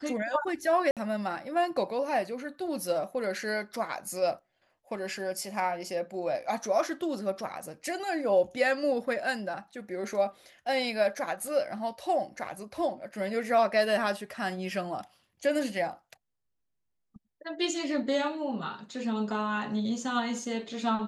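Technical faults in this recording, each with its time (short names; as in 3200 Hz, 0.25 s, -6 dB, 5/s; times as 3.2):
0.91–0.97 gap 57 ms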